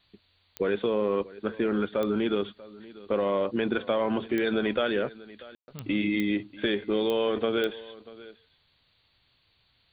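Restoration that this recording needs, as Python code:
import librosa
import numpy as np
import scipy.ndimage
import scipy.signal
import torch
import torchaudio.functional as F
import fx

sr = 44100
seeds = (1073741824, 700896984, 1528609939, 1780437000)

y = fx.fix_declick_ar(x, sr, threshold=10.0)
y = fx.fix_ambience(y, sr, seeds[0], print_start_s=8.63, print_end_s=9.13, start_s=5.55, end_s=5.68)
y = fx.noise_reduce(y, sr, print_start_s=8.63, print_end_s=9.13, reduce_db=7.0)
y = fx.fix_echo_inverse(y, sr, delay_ms=639, level_db=-19.5)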